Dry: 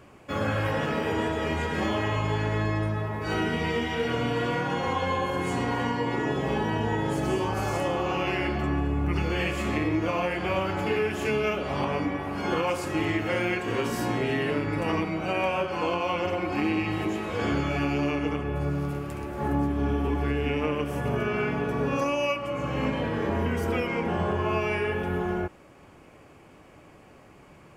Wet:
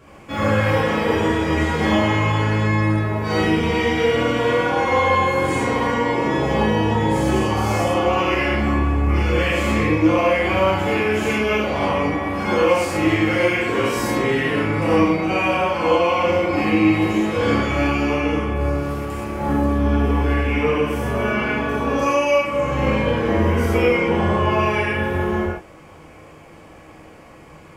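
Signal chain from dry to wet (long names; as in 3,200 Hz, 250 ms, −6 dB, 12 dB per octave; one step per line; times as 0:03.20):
reverb whose tail is shaped and stops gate 150 ms flat, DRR −8 dB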